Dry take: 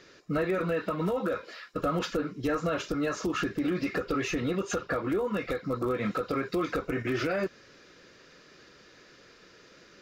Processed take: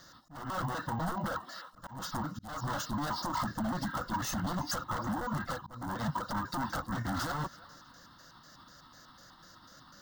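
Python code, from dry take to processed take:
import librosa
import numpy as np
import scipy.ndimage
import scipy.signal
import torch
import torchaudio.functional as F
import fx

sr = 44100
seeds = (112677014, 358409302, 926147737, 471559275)

p1 = fx.pitch_trill(x, sr, semitones=-5.0, every_ms=124)
p2 = fx.high_shelf(p1, sr, hz=6800.0, db=9.0)
p3 = p2 + fx.echo_thinned(p2, sr, ms=324, feedback_pct=40, hz=670.0, wet_db=-21.0, dry=0)
p4 = 10.0 ** (-28.0 / 20.0) * (np.abs((p3 / 10.0 ** (-28.0 / 20.0) + 3.0) % 4.0 - 2.0) - 1.0)
p5 = fx.fixed_phaser(p4, sr, hz=1000.0, stages=4)
p6 = fx.auto_swell(p5, sr, attack_ms=292.0)
p7 = np.repeat(scipy.signal.resample_poly(p6, 1, 2), 2)[:len(p6)]
y = F.gain(torch.from_numpy(p7), 3.5).numpy()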